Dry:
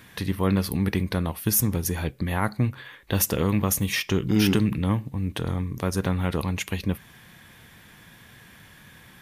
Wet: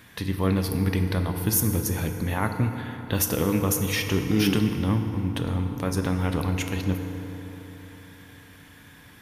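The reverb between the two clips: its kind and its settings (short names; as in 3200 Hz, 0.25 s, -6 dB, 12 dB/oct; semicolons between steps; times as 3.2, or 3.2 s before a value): FDN reverb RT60 3.8 s, high-frequency decay 0.5×, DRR 5 dB; gain -1.5 dB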